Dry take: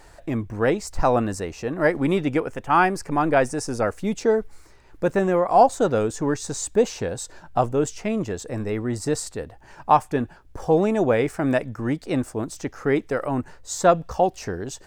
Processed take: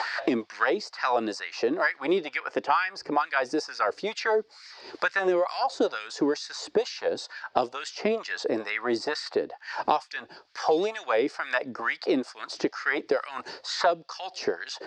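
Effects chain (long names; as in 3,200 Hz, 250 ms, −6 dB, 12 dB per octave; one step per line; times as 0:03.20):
auto-filter high-pass sine 2.2 Hz 310–1,900 Hz
transistor ladder low-pass 5,100 Hz, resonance 70%
multiband upward and downward compressor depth 100%
level +5.5 dB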